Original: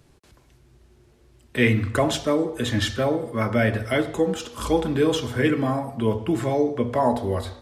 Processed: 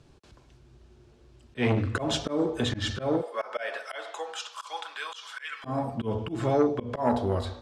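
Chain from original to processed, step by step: 3.21–5.64 s: high-pass 500 Hz -> 1.3 kHz 24 dB/octave; slow attack 161 ms; low-pass 6.4 kHz 12 dB/octave; peaking EQ 2 kHz -5.5 dB 0.33 oct; transformer saturation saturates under 530 Hz

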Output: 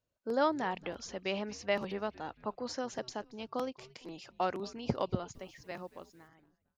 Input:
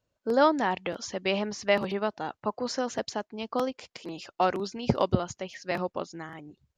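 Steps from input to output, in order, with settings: fade out at the end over 1.93 s; 5.33–6.27 s: added noise white -68 dBFS; frequency-shifting echo 228 ms, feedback 44%, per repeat -120 Hz, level -21 dB; trim -7.5 dB

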